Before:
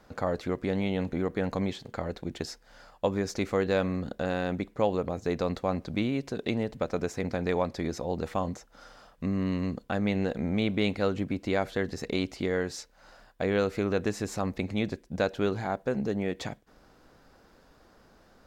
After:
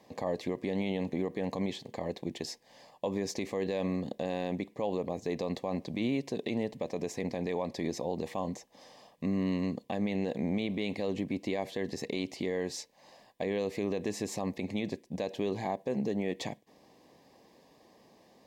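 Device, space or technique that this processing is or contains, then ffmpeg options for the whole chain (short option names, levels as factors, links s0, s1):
PA system with an anti-feedback notch: -af "highpass=150,asuperstop=centerf=1400:order=4:qfactor=2.2,alimiter=limit=0.0841:level=0:latency=1:release=42"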